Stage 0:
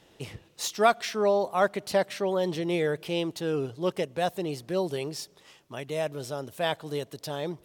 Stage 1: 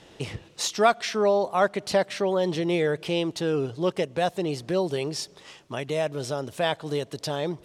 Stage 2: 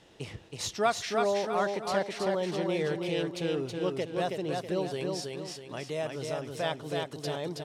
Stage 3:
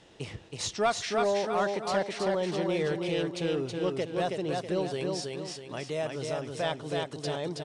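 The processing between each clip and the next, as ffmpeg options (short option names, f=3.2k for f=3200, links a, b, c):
-filter_complex "[0:a]lowpass=8.9k,asplit=2[a][b];[b]acompressor=threshold=-36dB:ratio=6,volume=3dB[c];[a][c]amix=inputs=2:normalize=0"
-af "aecho=1:1:323|646|969|1292|1615:0.668|0.274|0.112|0.0461|0.0189,volume=-7dB"
-af "asoftclip=type=tanh:threshold=-17.5dB,aresample=22050,aresample=44100,volume=1.5dB"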